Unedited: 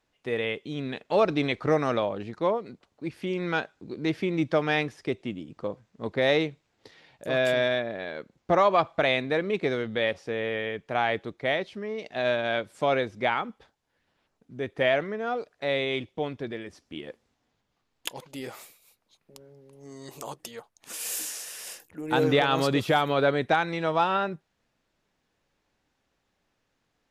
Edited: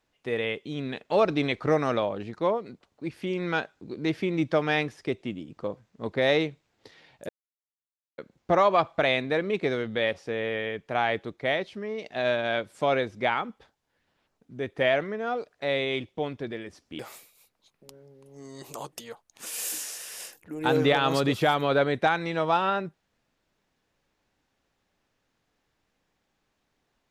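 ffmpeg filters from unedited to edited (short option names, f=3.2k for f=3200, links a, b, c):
-filter_complex "[0:a]asplit=4[a][b][c][d];[a]atrim=end=7.29,asetpts=PTS-STARTPTS,afade=t=out:st=7.286:d=0.004:c=hsin[e];[b]atrim=start=7.29:end=8.18,asetpts=PTS-STARTPTS,volume=0[f];[c]atrim=start=8.18:end=16.992,asetpts=PTS-STARTPTS,afade=t=in:d=0.004:c=hsin[g];[d]atrim=start=18.458[h];[e][f][g]concat=n=3:v=0:a=1[i];[i][h]acrossfade=d=0.004:c1=hsin:c2=hsin"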